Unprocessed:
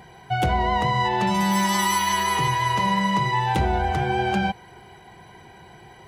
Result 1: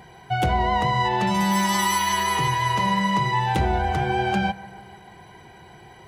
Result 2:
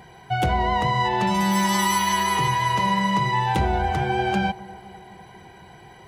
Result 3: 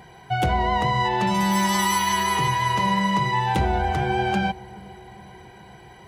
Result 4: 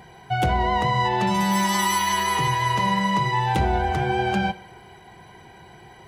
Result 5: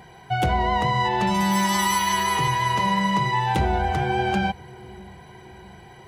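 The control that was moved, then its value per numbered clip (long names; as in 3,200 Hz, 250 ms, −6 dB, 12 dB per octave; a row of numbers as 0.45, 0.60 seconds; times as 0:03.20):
bucket-brigade delay, delay time: 147, 250, 414, 65, 642 milliseconds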